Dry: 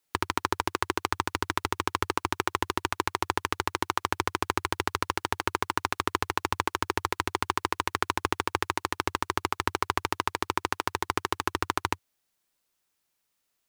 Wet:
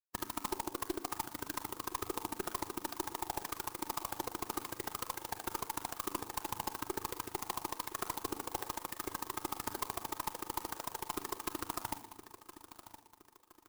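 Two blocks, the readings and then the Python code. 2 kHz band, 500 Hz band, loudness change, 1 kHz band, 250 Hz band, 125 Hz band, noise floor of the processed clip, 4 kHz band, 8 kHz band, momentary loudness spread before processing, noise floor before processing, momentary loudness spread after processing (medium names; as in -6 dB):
-16.0 dB, -10.0 dB, -10.0 dB, -11.5 dB, -8.5 dB, -13.5 dB, -64 dBFS, -11.5 dB, -4.5 dB, 2 LU, -78 dBFS, 3 LU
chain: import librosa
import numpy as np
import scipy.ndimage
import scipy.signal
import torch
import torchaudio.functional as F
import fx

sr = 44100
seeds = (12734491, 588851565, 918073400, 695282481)

p1 = fx.bin_expand(x, sr, power=3.0)
p2 = fx.env_lowpass_down(p1, sr, base_hz=940.0, full_db=-32.0)
p3 = scipy.signal.sosfilt(scipy.signal.butter(2, 120.0, 'highpass', fs=sr, output='sos'), p2)
p4 = fx.room_shoebox(p3, sr, seeds[0], volume_m3=2200.0, walls='furnished', distance_m=0.87)
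p5 = fx.tube_stage(p4, sr, drive_db=29.0, bias=0.55)
p6 = fx.low_shelf(p5, sr, hz=170.0, db=-6.5)
p7 = p6 + fx.echo_feedback(p6, sr, ms=1017, feedback_pct=37, wet_db=-14, dry=0)
p8 = fx.clock_jitter(p7, sr, seeds[1], jitter_ms=0.11)
y = F.gain(torch.from_numpy(p8), 3.5).numpy()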